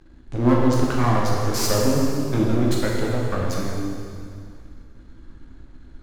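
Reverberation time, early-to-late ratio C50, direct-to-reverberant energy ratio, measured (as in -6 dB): 2.3 s, -0.5 dB, -3.5 dB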